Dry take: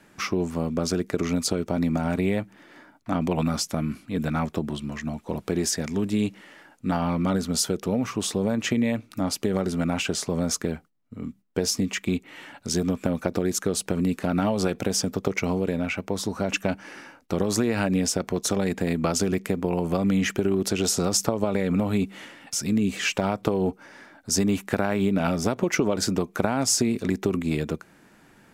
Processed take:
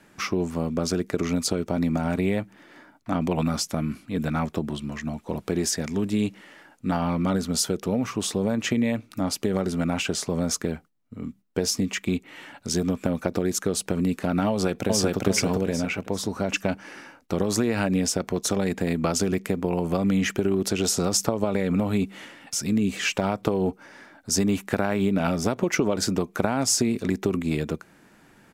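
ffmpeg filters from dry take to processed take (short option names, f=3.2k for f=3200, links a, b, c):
-filter_complex "[0:a]asplit=2[a][b];[b]afade=t=in:st=14.49:d=0.01,afade=t=out:st=15.17:d=0.01,aecho=0:1:400|800|1200|1600:0.944061|0.283218|0.0849655|0.0254896[c];[a][c]amix=inputs=2:normalize=0"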